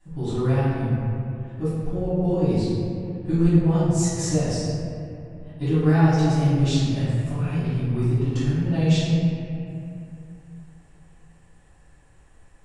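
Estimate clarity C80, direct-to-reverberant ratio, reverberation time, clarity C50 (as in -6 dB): -1.0 dB, -16.0 dB, 2.6 s, -4.0 dB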